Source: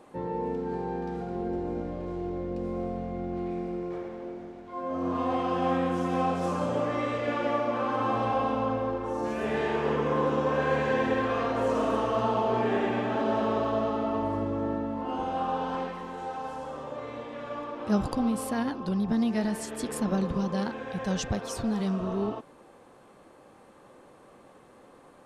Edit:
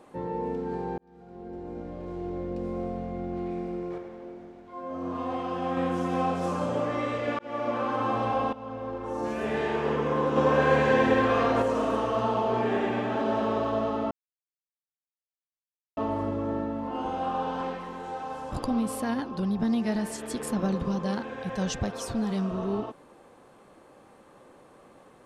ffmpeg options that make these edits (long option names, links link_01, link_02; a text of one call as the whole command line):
ffmpeg -i in.wav -filter_complex "[0:a]asplit=10[link_01][link_02][link_03][link_04][link_05][link_06][link_07][link_08][link_09][link_10];[link_01]atrim=end=0.98,asetpts=PTS-STARTPTS,afade=type=out:start_time=0.976:duration=0.004:curve=hsin[link_11];[link_02]atrim=start=0.98:end=3.982,asetpts=PTS-STARTPTS,afade=type=in:duration=1.42[link_12];[link_03]atrim=start=3.978:end=5.772,asetpts=PTS-STARTPTS,volume=-3.5dB[link_13];[link_04]atrim=start=5.768:end=7.39,asetpts=PTS-STARTPTS,afade=type=out:start_time=1.618:duration=0.004:curve=hsin[link_14];[link_05]atrim=start=7.39:end=8.53,asetpts=PTS-STARTPTS,afade=type=in:duration=0.29,afade=type=out:start_time=1.136:duration=0.004:curve=hsin:silence=0.149624[link_15];[link_06]atrim=start=8.53:end=10.362,asetpts=PTS-STARTPTS,afade=type=in:duration=0.7:silence=0.149624[link_16];[link_07]atrim=start=10.358:end=11.622,asetpts=PTS-STARTPTS,volume=4.5dB[link_17];[link_08]atrim=start=11.618:end=14.11,asetpts=PTS-STARTPTS,afade=type=out:start_time=2.488:duration=0.004:curve=hsin,apad=pad_dur=1.86[link_18];[link_09]atrim=start=14.11:end=16.662,asetpts=PTS-STARTPTS,afade=type=in:duration=0.004:curve=hsin[link_19];[link_10]atrim=start=18.008[link_20];[link_11][link_12]concat=n=2:v=0:a=1[link_21];[link_21][link_13]acrossfade=duration=0.004:curve1=hsin:curve2=hsin[link_22];[link_14][link_15][link_16]concat=n=3:v=0:a=1[link_23];[link_22][link_23]acrossfade=duration=0.004:curve1=hsin:curve2=hsin[link_24];[link_24][link_17]acrossfade=duration=0.004:curve1=hsin:curve2=hsin[link_25];[link_18][link_19]concat=n=2:v=0:a=1[link_26];[link_25][link_26]acrossfade=duration=0.004:curve1=hsin:curve2=hsin[link_27];[link_27][link_20]acrossfade=duration=0.004:curve1=hsin:curve2=hsin" out.wav